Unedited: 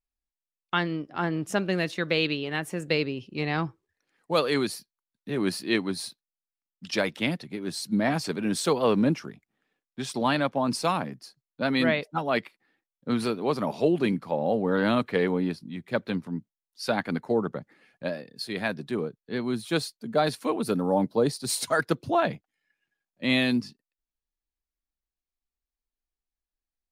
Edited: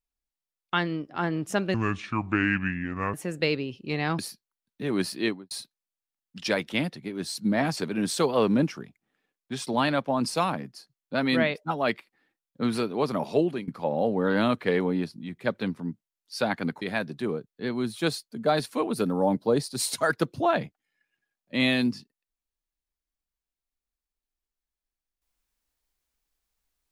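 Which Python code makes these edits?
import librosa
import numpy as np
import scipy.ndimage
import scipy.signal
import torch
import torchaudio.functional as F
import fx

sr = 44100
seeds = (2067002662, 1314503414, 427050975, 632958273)

y = fx.studio_fade_out(x, sr, start_s=5.66, length_s=0.32)
y = fx.edit(y, sr, fx.speed_span(start_s=1.74, length_s=0.88, speed=0.63),
    fx.cut(start_s=3.67, length_s=0.99),
    fx.fade_out_to(start_s=13.87, length_s=0.28, floor_db=-22.5),
    fx.cut(start_s=17.29, length_s=1.22), tone=tone)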